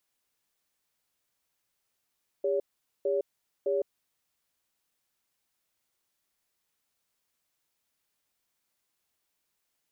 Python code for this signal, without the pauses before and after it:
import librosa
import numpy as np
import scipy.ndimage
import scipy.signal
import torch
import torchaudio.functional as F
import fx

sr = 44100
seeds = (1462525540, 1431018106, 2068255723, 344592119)

y = fx.cadence(sr, length_s=1.53, low_hz=402.0, high_hz=565.0, on_s=0.16, off_s=0.45, level_db=-27.5)